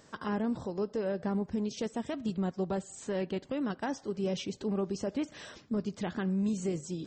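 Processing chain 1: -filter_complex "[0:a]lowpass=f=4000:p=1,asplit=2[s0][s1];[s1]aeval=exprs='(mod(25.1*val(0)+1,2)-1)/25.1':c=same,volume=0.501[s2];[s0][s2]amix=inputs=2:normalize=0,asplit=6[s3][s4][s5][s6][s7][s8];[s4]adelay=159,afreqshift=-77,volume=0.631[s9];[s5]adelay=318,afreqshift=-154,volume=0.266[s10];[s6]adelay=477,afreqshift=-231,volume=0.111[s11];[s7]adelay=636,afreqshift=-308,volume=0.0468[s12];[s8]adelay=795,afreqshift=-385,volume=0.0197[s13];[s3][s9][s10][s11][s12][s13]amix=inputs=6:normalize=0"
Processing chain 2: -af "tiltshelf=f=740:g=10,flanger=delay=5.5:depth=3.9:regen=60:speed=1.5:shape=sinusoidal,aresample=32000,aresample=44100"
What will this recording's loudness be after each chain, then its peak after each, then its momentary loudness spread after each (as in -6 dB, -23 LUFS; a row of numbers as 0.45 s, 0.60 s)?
-31.5 LUFS, -31.5 LUFS; -18.5 dBFS, -17.5 dBFS; 4 LU, 6 LU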